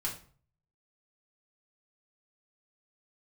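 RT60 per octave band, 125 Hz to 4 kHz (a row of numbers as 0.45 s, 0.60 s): 0.75 s, 0.50 s, 0.45 s, 0.45 s, 0.35 s, 0.30 s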